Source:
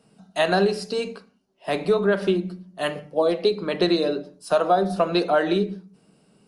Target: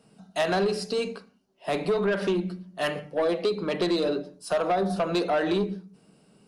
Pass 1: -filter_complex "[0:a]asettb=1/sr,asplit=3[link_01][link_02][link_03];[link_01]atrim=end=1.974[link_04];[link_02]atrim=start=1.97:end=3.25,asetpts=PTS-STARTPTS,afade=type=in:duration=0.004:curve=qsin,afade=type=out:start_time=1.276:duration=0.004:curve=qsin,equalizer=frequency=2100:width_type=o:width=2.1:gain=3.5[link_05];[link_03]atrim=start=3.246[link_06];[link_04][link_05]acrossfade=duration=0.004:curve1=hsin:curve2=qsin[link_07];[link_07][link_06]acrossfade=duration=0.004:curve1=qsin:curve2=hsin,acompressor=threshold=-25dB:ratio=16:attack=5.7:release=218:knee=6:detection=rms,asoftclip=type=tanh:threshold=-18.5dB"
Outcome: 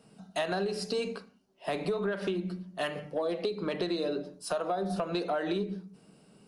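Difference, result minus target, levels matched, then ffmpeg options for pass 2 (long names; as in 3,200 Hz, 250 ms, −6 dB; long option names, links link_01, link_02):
downward compressor: peak gain reduction +10.5 dB
-filter_complex "[0:a]asettb=1/sr,asplit=3[link_01][link_02][link_03];[link_01]atrim=end=1.974[link_04];[link_02]atrim=start=1.97:end=3.25,asetpts=PTS-STARTPTS,afade=type=in:duration=0.004:curve=qsin,afade=type=out:start_time=1.276:duration=0.004:curve=qsin,equalizer=frequency=2100:width_type=o:width=2.1:gain=3.5[link_05];[link_03]atrim=start=3.246[link_06];[link_04][link_05]acrossfade=duration=0.004:curve1=hsin:curve2=qsin[link_07];[link_07][link_06]acrossfade=duration=0.004:curve1=qsin:curve2=hsin,acompressor=threshold=-13dB:ratio=16:attack=5.7:release=218:knee=6:detection=rms,asoftclip=type=tanh:threshold=-18.5dB"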